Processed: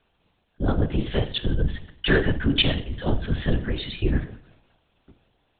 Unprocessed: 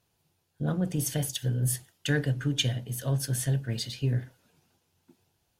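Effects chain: low shelf 110 Hz -10 dB; reverb RT60 0.70 s, pre-delay 5 ms, DRR 11.5 dB; LPC vocoder at 8 kHz whisper; gain +9 dB

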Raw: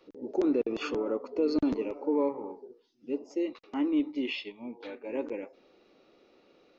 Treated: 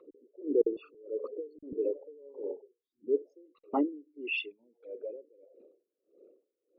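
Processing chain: formant sharpening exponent 3; dB-linear tremolo 1.6 Hz, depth 32 dB; gain +5 dB

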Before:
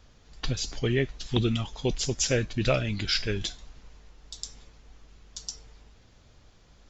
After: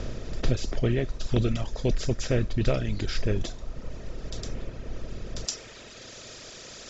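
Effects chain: per-bin compression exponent 0.4; reverb removal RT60 1.9 s; tilt -2.5 dB/oct, from 5.44 s +2 dB/oct; gain -6.5 dB

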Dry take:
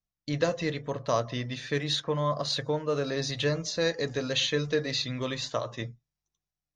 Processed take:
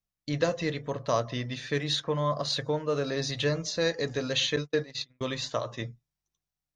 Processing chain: 4.56–5.21 gate -28 dBFS, range -41 dB

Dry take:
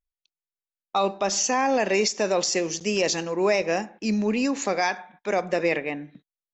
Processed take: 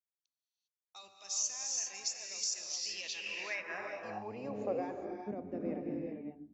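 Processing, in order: octaver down 1 oct, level 0 dB; non-linear reverb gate 0.43 s rising, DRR 0.5 dB; band-pass sweep 6500 Hz -> 260 Hz, 2.56–5.3; gain -8 dB

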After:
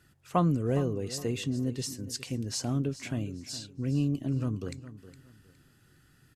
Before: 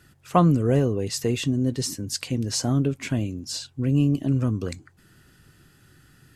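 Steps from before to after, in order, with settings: feedback echo 0.413 s, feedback 26%, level -15 dB; gain -7.5 dB

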